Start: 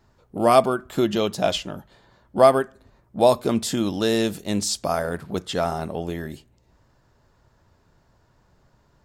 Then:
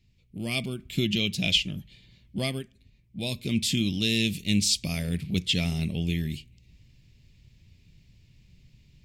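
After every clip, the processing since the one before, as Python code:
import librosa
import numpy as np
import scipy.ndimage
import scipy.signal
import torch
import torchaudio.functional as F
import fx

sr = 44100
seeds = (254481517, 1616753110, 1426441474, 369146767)

y = fx.rider(x, sr, range_db=4, speed_s=0.5)
y = fx.curve_eq(y, sr, hz=(170.0, 830.0, 1500.0, 2300.0, 4500.0, 6600.0), db=(0, -28, -26, 5, -1, -5))
y = y * librosa.db_to_amplitude(2.0)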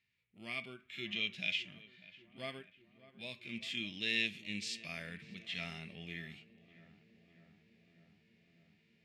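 y = fx.bandpass_q(x, sr, hz=1700.0, q=2.1)
y = fx.hpss(y, sr, part='percussive', gain_db=-16)
y = fx.echo_filtered(y, sr, ms=597, feedback_pct=77, hz=1700.0, wet_db=-17.0)
y = y * librosa.db_to_amplitude(6.0)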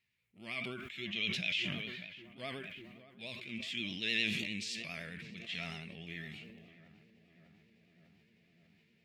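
y = fx.vibrato(x, sr, rate_hz=9.8, depth_cents=67.0)
y = fx.sustainer(y, sr, db_per_s=30.0)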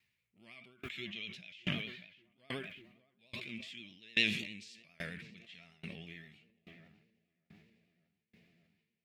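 y = fx.tremolo_decay(x, sr, direction='decaying', hz=1.2, depth_db=30)
y = y * librosa.db_to_amplitude(5.5)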